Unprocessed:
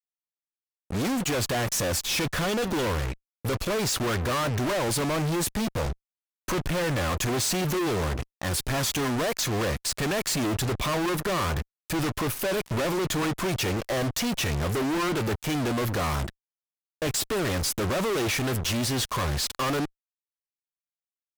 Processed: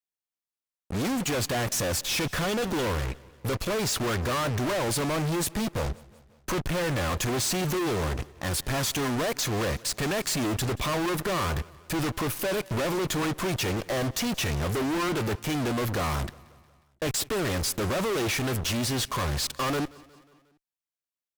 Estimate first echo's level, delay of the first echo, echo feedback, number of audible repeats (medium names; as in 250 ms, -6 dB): -23.0 dB, 180 ms, 57%, 3